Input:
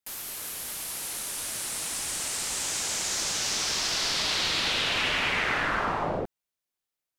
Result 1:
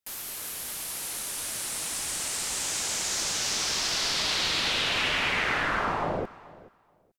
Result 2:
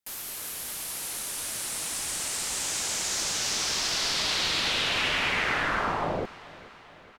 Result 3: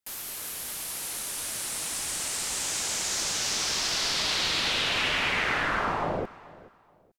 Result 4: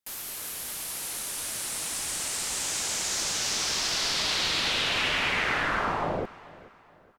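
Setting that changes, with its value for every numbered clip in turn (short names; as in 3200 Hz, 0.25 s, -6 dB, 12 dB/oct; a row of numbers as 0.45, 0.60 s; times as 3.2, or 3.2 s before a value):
feedback echo, feedback: 17, 60, 26, 38%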